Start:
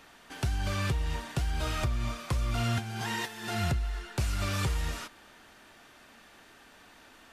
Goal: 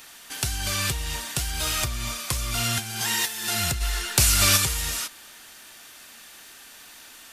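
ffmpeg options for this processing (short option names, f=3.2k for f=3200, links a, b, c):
-filter_complex "[0:a]asplit=3[a][b][c];[a]afade=t=out:st=3.8:d=0.02[d];[b]acontrast=75,afade=t=in:st=3.8:d=0.02,afade=t=out:st=4.56:d=0.02[e];[c]afade=t=in:st=4.56:d=0.02[f];[d][e][f]amix=inputs=3:normalize=0,crystalizer=i=7.5:c=0,volume=-1dB"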